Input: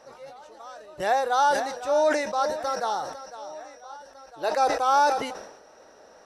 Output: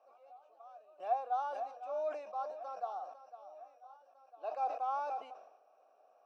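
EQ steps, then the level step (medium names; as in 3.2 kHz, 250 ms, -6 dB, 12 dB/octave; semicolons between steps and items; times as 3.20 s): vowel filter a; high-pass 200 Hz 24 dB/octave; peaking EQ 3.7 kHz -3 dB 0.43 oct; -6.5 dB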